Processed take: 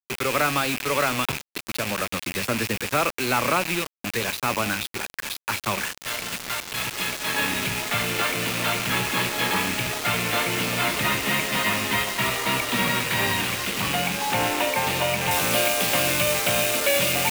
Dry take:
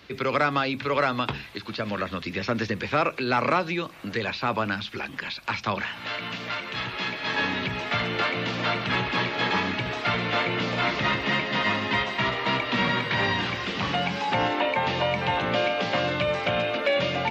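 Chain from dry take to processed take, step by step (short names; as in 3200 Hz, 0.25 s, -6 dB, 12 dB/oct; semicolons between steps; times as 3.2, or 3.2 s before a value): rattling part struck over -37 dBFS, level -20 dBFS; bit-crush 5-bit; high shelf 4700 Hz +3.5 dB, from 15.31 s +11 dB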